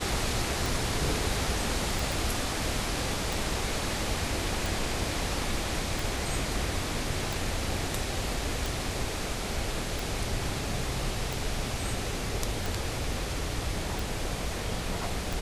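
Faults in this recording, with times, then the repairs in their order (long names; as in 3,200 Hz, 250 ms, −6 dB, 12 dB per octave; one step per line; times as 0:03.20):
scratch tick 45 rpm
0:02.12: click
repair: click removal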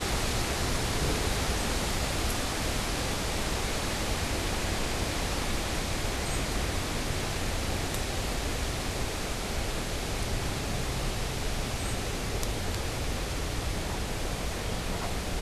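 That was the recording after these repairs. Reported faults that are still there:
0:02.12: click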